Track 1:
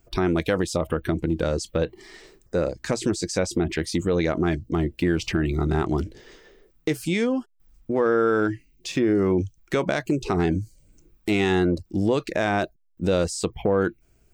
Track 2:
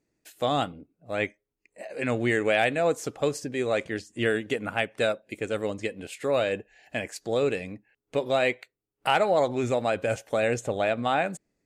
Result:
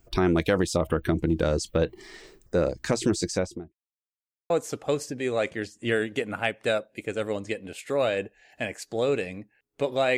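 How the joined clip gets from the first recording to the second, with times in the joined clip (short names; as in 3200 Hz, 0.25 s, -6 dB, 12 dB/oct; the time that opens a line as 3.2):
track 1
3.22–3.75 studio fade out
3.75–4.5 mute
4.5 switch to track 2 from 2.84 s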